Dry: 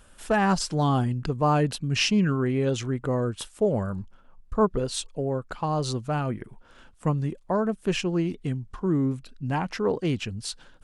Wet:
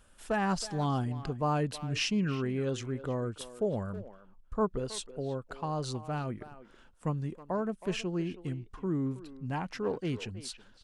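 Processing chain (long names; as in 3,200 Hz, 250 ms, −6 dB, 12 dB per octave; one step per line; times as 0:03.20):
far-end echo of a speakerphone 320 ms, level −13 dB
level −7.5 dB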